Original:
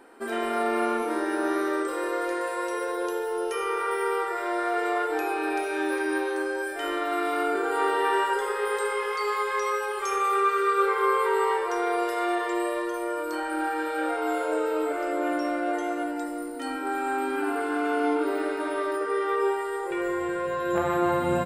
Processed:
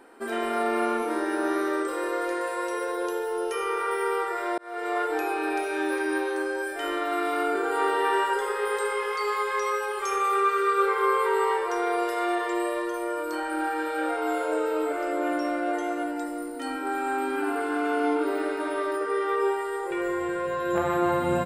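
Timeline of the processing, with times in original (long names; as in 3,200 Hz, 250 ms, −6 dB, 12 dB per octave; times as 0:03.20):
0:04.58–0:04.99: fade in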